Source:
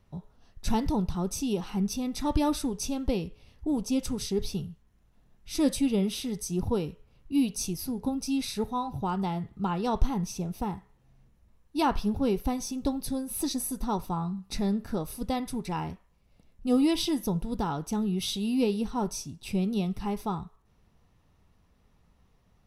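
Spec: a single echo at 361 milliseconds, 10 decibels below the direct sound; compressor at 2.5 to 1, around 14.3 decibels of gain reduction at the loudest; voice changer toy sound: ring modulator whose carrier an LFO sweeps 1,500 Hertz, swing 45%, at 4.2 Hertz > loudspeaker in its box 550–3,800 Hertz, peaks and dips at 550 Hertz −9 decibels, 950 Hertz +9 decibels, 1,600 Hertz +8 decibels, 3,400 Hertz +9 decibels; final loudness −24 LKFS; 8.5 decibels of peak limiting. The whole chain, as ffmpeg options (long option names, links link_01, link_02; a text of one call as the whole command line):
ffmpeg -i in.wav -af "acompressor=threshold=-38dB:ratio=2.5,alimiter=level_in=8dB:limit=-24dB:level=0:latency=1,volume=-8dB,aecho=1:1:361:0.316,aeval=exprs='val(0)*sin(2*PI*1500*n/s+1500*0.45/4.2*sin(2*PI*4.2*n/s))':channel_layout=same,highpass=550,equalizer=frequency=550:width_type=q:width=4:gain=-9,equalizer=frequency=950:width_type=q:width=4:gain=9,equalizer=frequency=1600:width_type=q:width=4:gain=8,equalizer=frequency=3400:width_type=q:width=4:gain=9,lowpass=frequency=3800:width=0.5412,lowpass=frequency=3800:width=1.3066,volume=13.5dB" out.wav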